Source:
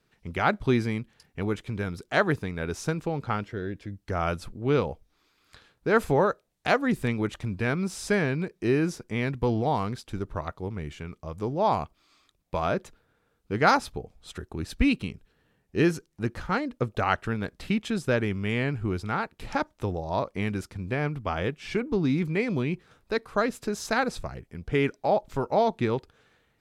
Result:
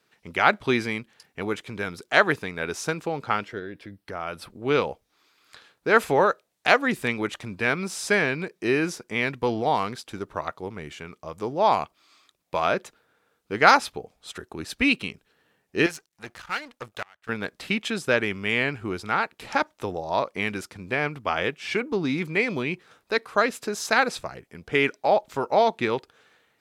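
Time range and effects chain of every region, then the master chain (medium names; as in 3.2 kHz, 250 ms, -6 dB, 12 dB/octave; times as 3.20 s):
3.59–4.50 s: peaking EQ 6.8 kHz -10.5 dB 0.46 oct + compression 3:1, threshold -32 dBFS
15.86–17.29 s: partial rectifier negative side -12 dB + peaking EQ 320 Hz -10.5 dB 2.9 oct + inverted gate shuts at -19 dBFS, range -28 dB
whole clip: high-pass 470 Hz 6 dB/octave; dynamic bell 2.5 kHz, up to +4 dB, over -41 dBFS, Q 1.1; trim +5 dB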